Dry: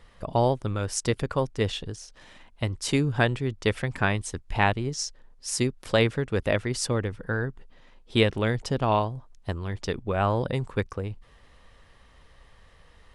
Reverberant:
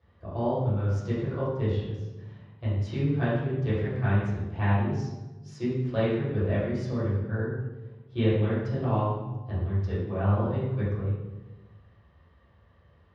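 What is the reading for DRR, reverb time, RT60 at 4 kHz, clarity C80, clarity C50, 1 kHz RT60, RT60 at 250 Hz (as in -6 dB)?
-11.5 dB, 1.2 s, 0.80 s, 2.0 dB, -1.0 dB, 1.0 s, 1.6 s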